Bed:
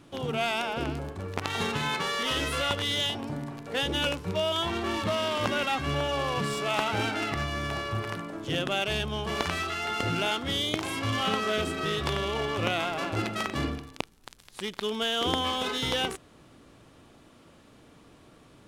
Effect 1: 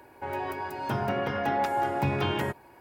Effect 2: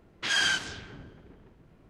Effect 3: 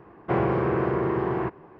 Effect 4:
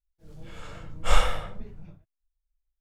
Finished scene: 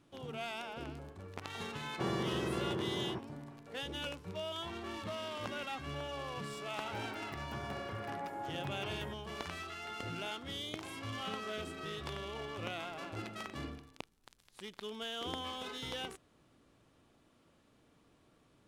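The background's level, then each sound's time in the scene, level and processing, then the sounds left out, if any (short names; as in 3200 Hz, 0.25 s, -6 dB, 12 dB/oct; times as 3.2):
bed -13 dB
1.7 add 3 -15.5 dB + bell 210 Hz +7.5 dB 1.3 oct
6.62 add 1 -15.5 dB
not used: 2, 4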